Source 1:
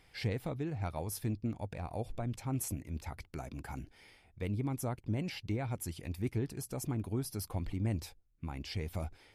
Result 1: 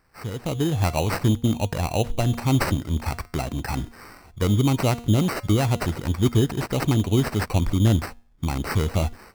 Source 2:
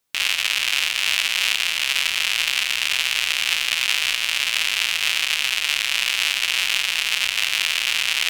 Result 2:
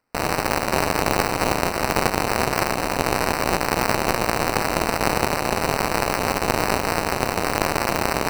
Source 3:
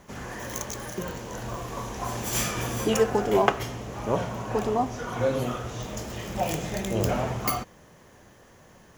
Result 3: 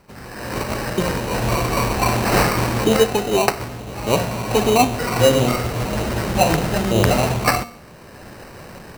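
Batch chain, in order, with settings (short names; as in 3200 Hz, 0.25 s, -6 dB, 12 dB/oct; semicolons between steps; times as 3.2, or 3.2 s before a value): de-hum 235.9 Hz, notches 12; AGC gain up to 16.5 dB; sample-rate reducer 3400 Hz, jitter 0%; gain -1 dB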